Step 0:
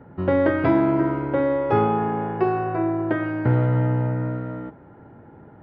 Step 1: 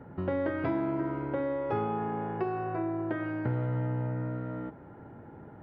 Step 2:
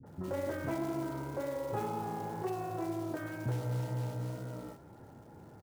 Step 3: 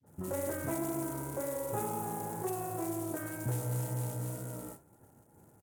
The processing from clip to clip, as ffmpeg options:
-af "acompressor=threshold=0.0224:ratio=2,volume=0.794"
-filter_complex "[0:a]flanger=delay=7.6:depth=9.4:regen=-38:speed=2:shape=triangular,acrusher=bits=5:mode=log:mix=0:aa=0.000001,acrossover=split=290|1600[s0][s1][s2];[s1]adelay=30[s3];[s2]adelay=60[s4];[s0][s3][s4]amix=inputs=3:normalize=0"
-af "highshelf=f=6400:t=q:w=1.5:g=13.5,agate=range=0.0224:threshold=0.00562:ratio=3:detection=peak" -ar 48000 -c:a sbc -b:a 128k

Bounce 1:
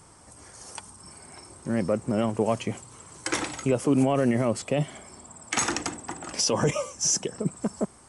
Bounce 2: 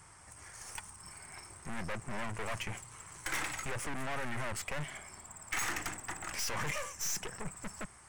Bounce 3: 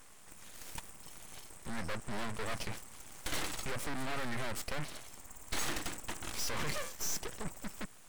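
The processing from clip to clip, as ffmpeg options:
-af "aeval=exprs='(tanh(50.1*val(0)+0.7)-tanh(0.7))/50.1':c=same,equalizer=f=250:t=o:w=1:g=-9,equalizer=f=500:t=o:w=1:g=-6,equalizer=f=2000:t=o:w=1:g=7,equalizer=f=4000:t=o:w=1:g=-4,volume=1.12"
-af "aeval=exprs='abs(val(0))':c=same,volume=1.19"

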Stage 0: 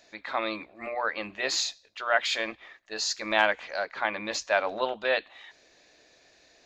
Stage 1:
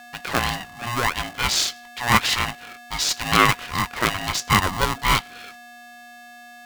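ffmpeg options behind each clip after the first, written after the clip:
-af "agate=range=0.141:threshold=0.00251:ratio=16:detection=peak,aeval=exprs='val(0)+0.00398*sin(2*PI*1200*n/s)':c=same,aeval=exprs='val(0)*sgn(sin(2*PI*480*n/s))':c=same,volume=2.24"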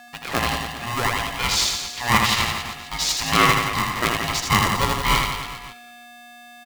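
-filter_complex "[0:a]bandreject=f=1500:w=12,asplit=2[s0][s1];[s1]aecho=0:1:80|172|277.8|399.5|539.4:0.631|0.398|0.251|0.158|0.1[s2];[s0][s2]amix=inputs=2:normalize=0,volume=0.891"

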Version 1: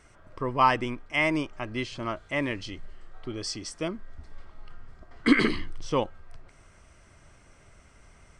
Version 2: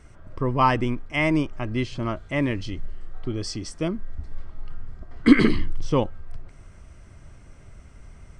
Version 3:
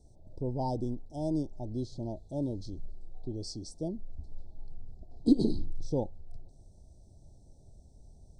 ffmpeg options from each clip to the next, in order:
-af "lowshelf=f=320:g=11.5"
-af "asuperstop=centerf=1800:order=20:qfactor=0.64,volume=0.355"

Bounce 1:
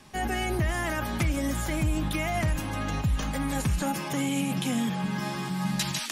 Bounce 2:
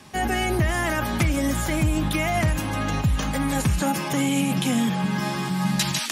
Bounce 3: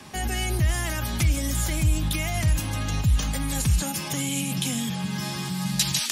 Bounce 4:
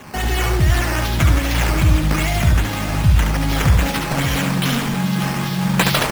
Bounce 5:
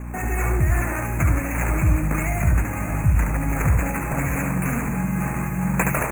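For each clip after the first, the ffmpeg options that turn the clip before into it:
-af "highpass=52,volume=1.88"
-filter_complex "[0:a]acrossover=split=130|3000[s0][s1][s2];[s1]acompressor=threshold=0.00562:ratio=2[s3];[s0][s3][s2]amix=inputs=3:normalize=0,volume=1.41"
-af "acrusher=samples=9:mix=1:aa=0.000001:lfo=1:lforange=9:lforate=2.5,aecho=1:1:71|583:0.596|0.316,volume=2.11"
-af "aeval=exprs='val(0)+0.0501*(sin(2*PI*60*n/s)+sin(2*PI*2*60*n/s)/2+sin(2*PI*3*60*n/s)/3+sin(2*PI*4*60*n/s)/4+sin(2*PI*5*60*n/s)/5)':c=same,asuperstop=centerf=4100:order=20:qfactor=1.1,volume=0.596"

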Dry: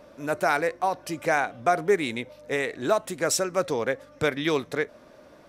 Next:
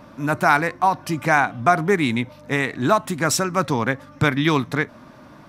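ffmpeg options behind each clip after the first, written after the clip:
-af "equalizer=f=125:t=o:w=1:g=9,equalizer=f=250:t=o:w=1:g=6,equalizer=f=500:t=o:w=1:g=-10,equalizer=f=1000:t=o:w=1:g=7,equalizer=f=8000:t=o:w=1:g=-3,volume=1.88"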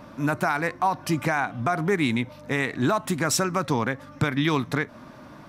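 -af "alimiter=limit=0.224:level=0:latency=1:release=165"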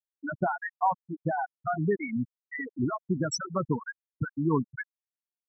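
-filter_complex "[0:a]acrossover=split=1300[s0][s1];[s0]aeval=exprs='val(0)*(1-0.7/2+0.7/2*cos(2*PI*2.2*n/s))':c=same[s2];[s1]aeval=exprs='val(0)*(1-0.7/2-0.7/2*cos(2*PI*2.2*n/s))':c=same[s3];[s2][s3]amix=inputs=2:normalize=0,afftfilt=real='re*gte(hypot(re,im),0.2)':imag='im*gte(hypot(re,im),0.2)':win_size=1024:overlap=0.75"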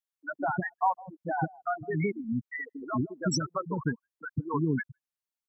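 -filter_complex "[0:a]acrossover=split=430[s0][s1];[s0]adelay=160[s2];[s2][s1]amix=inputs=2:normalize=0"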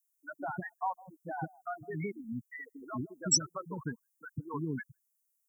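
-af "aexciter=amount=13.1:drive=2.8:freq=5800,volume=0.398"

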